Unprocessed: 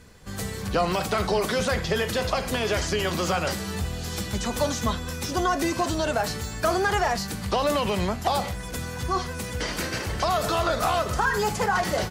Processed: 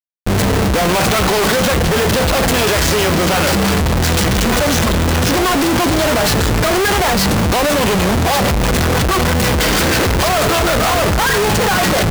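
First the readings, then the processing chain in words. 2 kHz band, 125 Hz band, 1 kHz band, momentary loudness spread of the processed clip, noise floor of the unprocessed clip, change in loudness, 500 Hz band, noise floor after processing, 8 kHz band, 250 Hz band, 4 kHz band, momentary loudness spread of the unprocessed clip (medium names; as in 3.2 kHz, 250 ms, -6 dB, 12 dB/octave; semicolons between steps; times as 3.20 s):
+12.0 dB, +14.0 dB, +9.5 dB, 1 LU, -34 dBFS, +12.0 dB, +10.5 dB, -14 dBFS, +14.0 dB, +13.5 dB, +13.5 dB, 7 LU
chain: in parallel at -1 dB: gain riding within 5 dB 0.5 s; on the sum: rotary cabinet horn 0.65 Hz, later 6.3 Hz, at 3.01 s; Schmitt trigger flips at -33.5 dBFS; trim +9 dB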